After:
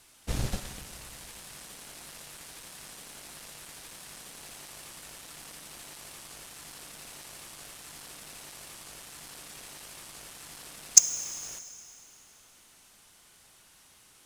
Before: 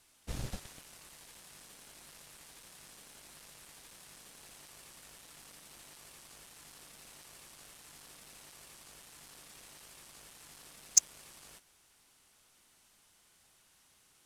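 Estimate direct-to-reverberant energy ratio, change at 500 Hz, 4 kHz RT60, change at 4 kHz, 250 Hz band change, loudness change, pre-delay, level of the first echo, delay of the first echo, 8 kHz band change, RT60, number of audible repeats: 10.5 dB, +8.5 dB, 2.6 s, +8.5 dB, +8.5 dB, +7.0 dB, 6 ms, no echo, no echo, +8.5 dB, 2.8 s, no echo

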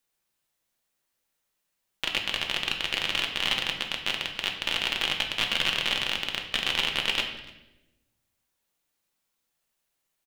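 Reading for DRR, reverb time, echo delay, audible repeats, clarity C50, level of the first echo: 2.0 dB, 1.0 s, 292 ms, 1, 7.0 dB, -23.0 dB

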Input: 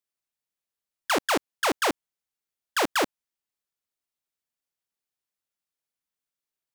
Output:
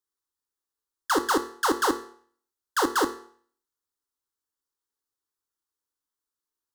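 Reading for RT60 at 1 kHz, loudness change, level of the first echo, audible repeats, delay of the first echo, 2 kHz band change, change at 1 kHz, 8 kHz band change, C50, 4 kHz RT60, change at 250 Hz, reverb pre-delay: 0.55 s, +0.5 dB, no echo, no echo, no echo, -1.5 dB, +2.0 dB, +0.5 dB, 12.5 dB, 0.50 s, +3.0 dB, 5 ms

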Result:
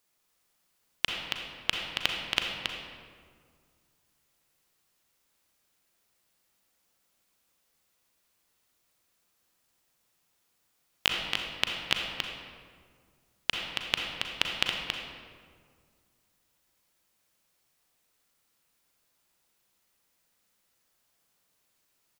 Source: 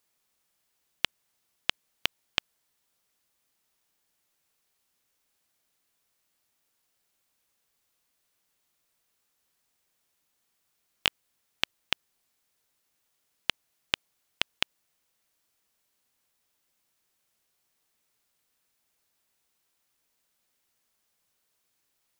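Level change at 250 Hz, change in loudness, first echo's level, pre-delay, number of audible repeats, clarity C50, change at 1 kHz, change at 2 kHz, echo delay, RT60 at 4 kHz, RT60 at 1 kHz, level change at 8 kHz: +4.0 dB, +1.5 dB, -5.5 dB, 34 ms, 1, 0.0 dB, +3.5 dB, +3.0 dB, 276 ms, 1.1 s, 1.8 s, +2.0 dB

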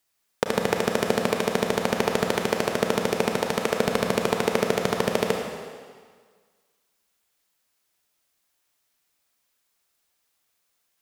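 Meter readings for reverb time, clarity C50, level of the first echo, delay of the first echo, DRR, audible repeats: 1.7 s, 2.5 dB, no echo, no echo, 1.5 dB, no echo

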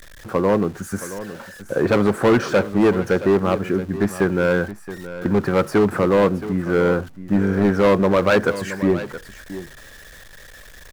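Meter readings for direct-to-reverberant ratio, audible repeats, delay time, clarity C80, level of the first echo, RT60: no reverb, 1, 672 ms, no reverb, -14.0 dB, no reverb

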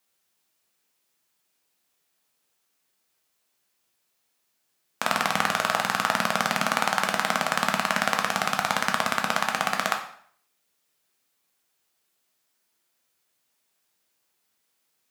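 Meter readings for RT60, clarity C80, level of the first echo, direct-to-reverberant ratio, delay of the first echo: 0.60 s, 12.5 dB, no echo, 2.5 dB, no echo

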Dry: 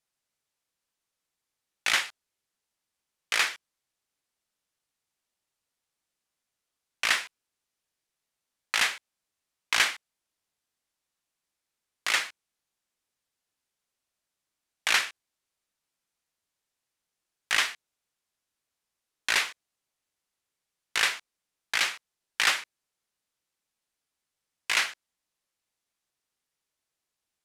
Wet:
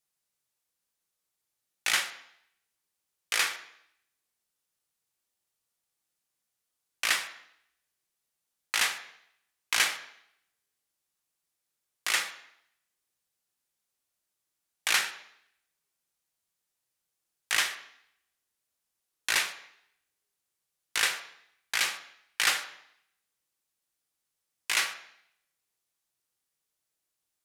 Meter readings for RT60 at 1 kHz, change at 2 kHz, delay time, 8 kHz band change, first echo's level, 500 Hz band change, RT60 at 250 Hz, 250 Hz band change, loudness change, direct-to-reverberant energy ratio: 0.70 s, -2.5 dB, no echo, +1.5 dB, no echo, -2.0 dB, 0.75 s, -2.0 dB, -1.5 dB, 7.0 dB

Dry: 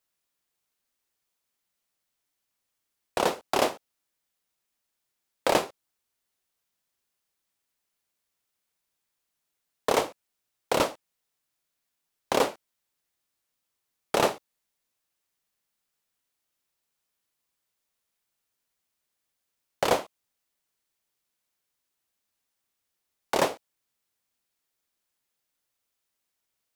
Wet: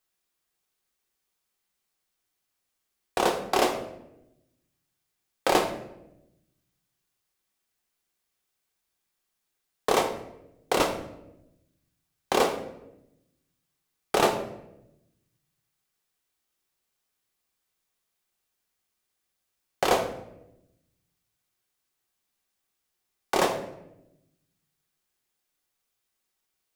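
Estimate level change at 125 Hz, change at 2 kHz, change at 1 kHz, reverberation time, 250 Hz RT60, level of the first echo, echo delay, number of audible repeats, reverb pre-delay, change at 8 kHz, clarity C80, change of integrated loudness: +1.5 dB, +1.5 dB, +2.0 dB, 0.90 s, 1.3 s, no echo, no echo, no echo, 3 ms, +1.0 dB, 12.0 dB, +1.0 dB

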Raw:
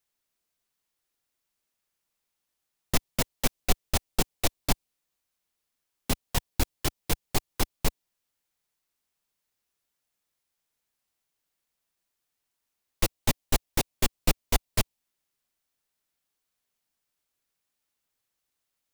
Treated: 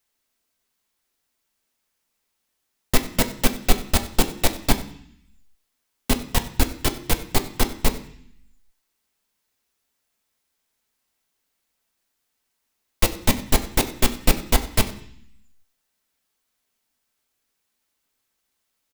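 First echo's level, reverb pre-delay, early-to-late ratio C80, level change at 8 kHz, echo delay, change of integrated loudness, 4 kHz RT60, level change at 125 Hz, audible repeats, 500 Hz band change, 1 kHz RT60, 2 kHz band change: -18.5 dB, 3 ms, 14.5 dB, +5.5 dB, 94 ms, +6.5 dB, 0.85 s, +5.5 dB, 1, +7.0 dB, 0.65 s, +7.0 dB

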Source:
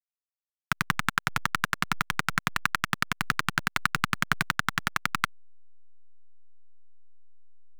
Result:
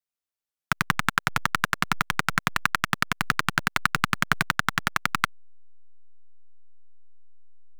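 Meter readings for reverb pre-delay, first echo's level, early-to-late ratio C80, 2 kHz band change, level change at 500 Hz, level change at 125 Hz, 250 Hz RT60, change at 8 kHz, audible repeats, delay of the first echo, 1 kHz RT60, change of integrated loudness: no reverb, no echo, no reverb, +3.0 dB, +5.0 dB, +2.5 dB, no reverb, +2.5 dB, no echo, no echo, no reverb, +3.0 dB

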